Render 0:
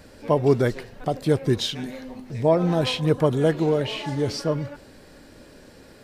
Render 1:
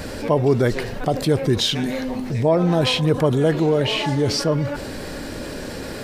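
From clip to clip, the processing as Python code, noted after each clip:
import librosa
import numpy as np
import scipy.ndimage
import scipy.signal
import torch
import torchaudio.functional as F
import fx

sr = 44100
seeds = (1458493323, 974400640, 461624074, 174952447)

y = fx.env_flatten(x, sr, amount_pct=50)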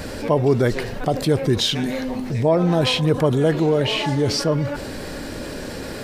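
y = x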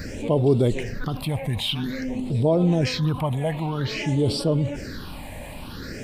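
y = fx.phaser_stages(x, sr, stages=6, low_hz=360.0, high_hz=1800.0, hz=0.51, feedback_pct=30)
y = y * librosa.db_to_amplitude(-1.5)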